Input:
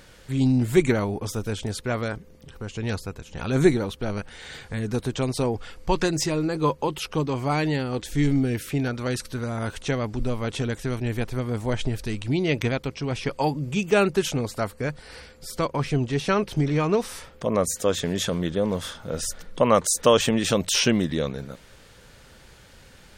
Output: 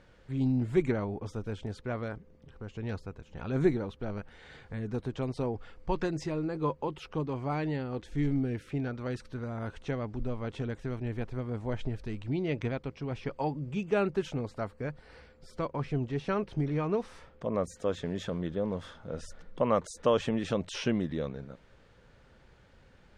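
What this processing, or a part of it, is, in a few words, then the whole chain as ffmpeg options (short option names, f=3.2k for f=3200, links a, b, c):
through cloth: -af "lowpass=8.3k,highshelf=f=3.4k:g=-15.5,volume=-7.5dB"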